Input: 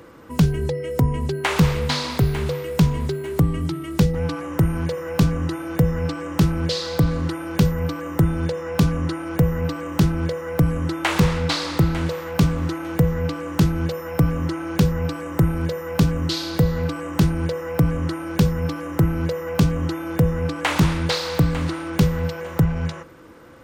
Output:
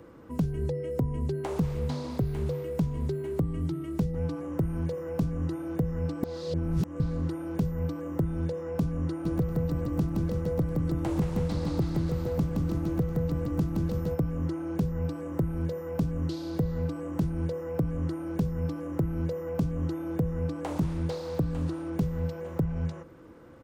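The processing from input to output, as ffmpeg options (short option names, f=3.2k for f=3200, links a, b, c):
-filter_complex "[0:a]asplit=3[a][b][c];[a]afade=t=out:st=9.24:d=0.02[d];[b]aecho=1:1:170|323|460.7|584.6|696.2|796.6:0.631|0.398|0.251|0.158|0.1|0.0631,afade=t=in:st=9.24:d=0.02,afade=t=out:st=14.14:d=0.02[e];[c]afade=t=in:st=14.14:d=0.02[f];[d][e][f]amix=inputs=3:normalize=0,asettb=1/sr,asplit=3[g][h][i];[g]atrim=end=21.394[j];[h]atrim=start=21.39:end=21.81,asetpts=PTS-STARTPTS,afade=t=in:d=0.004:c=qsin,afade=t=out:st=0.416:d=0.004:c=qsin,bandreject=f=2.1k:w=10[k];[i]atrim=start=21.806[l];[j][k]acrossfade=d=0.004:c1=hsin:c2=qsin[m];[m][l]acrossfade=d=0.004:c1=qsin:c2=hsin,asplit=3[n][o][p];[n]atrim=end=6.232[q];[o]atrim=start=6.228:end=7.002,asetpts=PTS-STARTPTS,areverse[r];[p]atrim=start=6.998[s];[q][r]acrossfade=d=0.004:c1=hsin:c2=hsin[t];[t][s]acrossfade=d=0.004:c1=hsin:c2=hsin,tiltshelf=f=910:g=5,acrossover=split=860|5100[u][v][w];[u]acompressor=threshold=-17dB:ratio=4[x];[v]acompressor=threshold=-44dB:ratio=4[y];[w]acompressor=threshold=-44dB:ratio=4[z];[x][y][z]amix=inputs=3:normalize=0,volume=-8dB"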